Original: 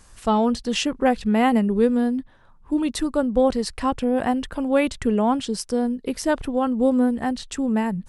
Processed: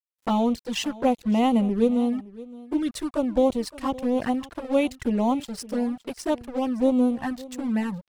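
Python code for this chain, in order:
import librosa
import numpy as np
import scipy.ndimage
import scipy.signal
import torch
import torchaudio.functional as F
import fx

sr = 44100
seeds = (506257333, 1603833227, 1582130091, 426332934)

y = fx.highpass(x, sr, hz=48.0, slope=6)
y = fx.notch(y, sr, hz=430.0, q=13.0)
y = np.sign(y) * np.maximum(np.abs(y) - 10.0 ** (-35.5 / 20.0), 0.0)
y = fx.env_flanger(y, sr, rest_ms=9.9, full_db=-18.0)
y = y + 10.0 ** (-19.0 / 20.0) * np.pad(y, (int(565 * sr / 1000.0), 0))[:len(y)]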